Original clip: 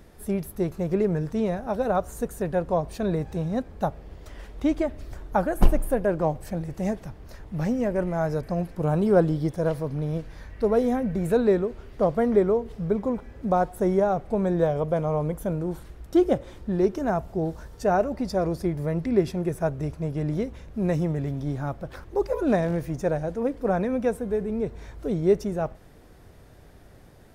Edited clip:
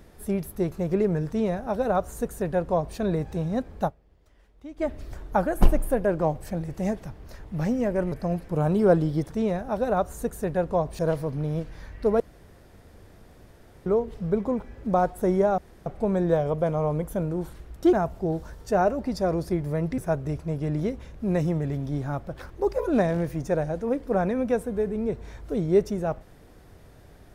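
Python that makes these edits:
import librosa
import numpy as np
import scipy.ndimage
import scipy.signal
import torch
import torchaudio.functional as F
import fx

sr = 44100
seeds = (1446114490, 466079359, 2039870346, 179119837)

y = fx.edit(x, sr, fx.duplicate(start_s=1.28, length_s=1.69, to_s=9.57),
    fx.fade_down_up(start_s=3.87, length_s=0.96, db=-18.0, fade_s=0.26, curve='exp'),
    fx.cut(start_s=8.12, length_s=0.27),
    fx.room_tone_fill(start_s=10.78, length_s=1.66),
    fx.insert_room_tone(at_s=14.16, length_s=0.28),
    fx.cut(start_s=16.23, length_s=0.83),
    fx.cut(start_s=19.11, length_s=0.41), tone=tone)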